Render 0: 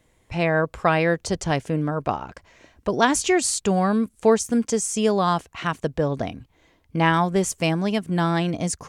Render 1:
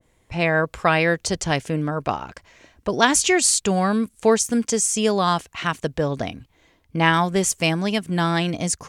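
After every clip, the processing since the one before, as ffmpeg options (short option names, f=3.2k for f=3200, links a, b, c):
-af "adynamicequalizer=threshold=0.02:dfrequency=1500:dqfactor=0.7:tfrequency=1500:tqfactor=0.7:attack=5:release=100:ratio=0.375:range=3:mode=boostabove:tftype=highshelf"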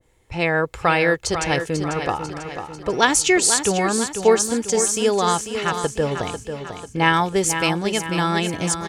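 -filter_complex "[0:a]aecho=1:1:2.3:0.38,asplit=2[a][b];[b]aecho=0:1:494|988|1482|1976|2470|2964:0.376|0.188|0.094|0.047|0.0235|0.0117[c];[a][c]amix=inputs=2:normalize=0"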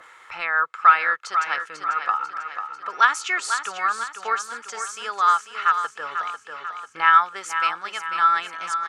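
-af "highpass=f=1.3k:t=q:w=7.2,acompressor=mode=upward:threshold=-22dB:ratio=2.5,aemphasis=mode=reproduction:type=bsi,volume=-6dB"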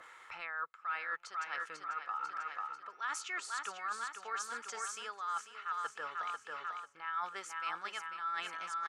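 -filter_complex "[0:a]areverse,acompressor=threshold=-29dB:ratio=8,areverse,asplit=2[a][b];[b]adelay=816.3,volume=-27dB,highshelf=f=4k:g=-18.4[c];[a][c]amix=inputs=2:normalize=0,volume=-7dB"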